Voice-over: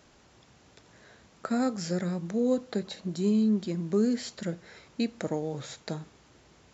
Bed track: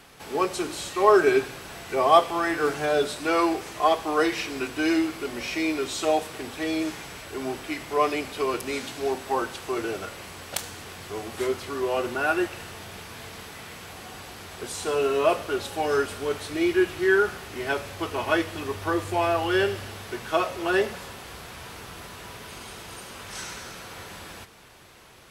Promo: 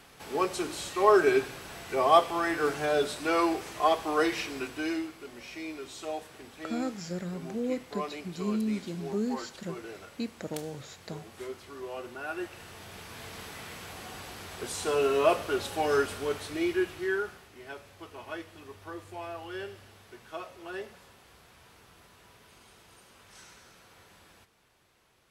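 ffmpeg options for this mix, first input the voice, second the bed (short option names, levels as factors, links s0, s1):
-filter_complex "[0:a]adelay=5200,volume=0.531[s0];[1:a]volume=2.37,afade=t=out:st=4.37:d=0.78:silence=0.334965,afade=t=in:st=12.28:d=1.18:silence=0.281838,afade=t=out:st=16.01:d=1.51:silence=0.199526[s1];[s0][s1]amix=inputs=2:normalize=0"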